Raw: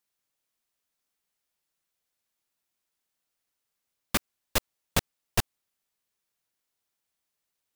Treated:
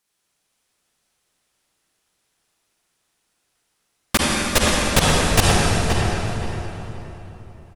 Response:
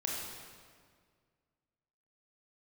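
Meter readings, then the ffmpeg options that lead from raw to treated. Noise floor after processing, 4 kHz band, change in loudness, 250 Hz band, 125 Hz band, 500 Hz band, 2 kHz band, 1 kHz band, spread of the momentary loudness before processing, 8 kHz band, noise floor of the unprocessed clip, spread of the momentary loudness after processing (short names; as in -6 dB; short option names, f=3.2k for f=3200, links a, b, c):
-73 dBFS, +14.5 dB, +12.0 dB, +17.0 dB, +17.0 dB, +16.5 dB, +15.0 dB, +16.0 dB, 1 LU, +14.0 dB, -84 dBFS, 17 LU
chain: -filter_complex "[0:a]asplit=2[a][b];[b]adelay=525,lowpass=f=2.4k:p=1,volume=-4dB,asplit=2[c][d];[d]adelay=525,lowpass=f=2.4k:p=1,volume=0.28,asplit=2[e][f];[f]adelay=525,lowpass=f=2.4k:p=1,volume=0.28,asplit=2[g][h];[h]adelay=525,lowpass=f=2.4k:p=1,volume=0.28[i];[a][c][e][g][i]amix=inputs=5:normalize=0[j];[1:a]atrim=start_sample=2205,asetrate=22932,aresample=44100[k];[j][k]afir=irnorm=-1:irlink=0,volume=6dB"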